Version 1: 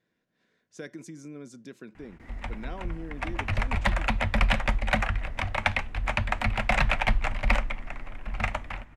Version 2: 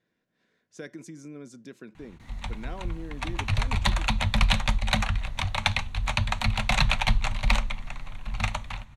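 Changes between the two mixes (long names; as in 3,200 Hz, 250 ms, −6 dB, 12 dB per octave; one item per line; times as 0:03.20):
background: add high shelf with overshoot 3,100 Hz +8 dB, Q 1.5
reverb: on, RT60 0.35 s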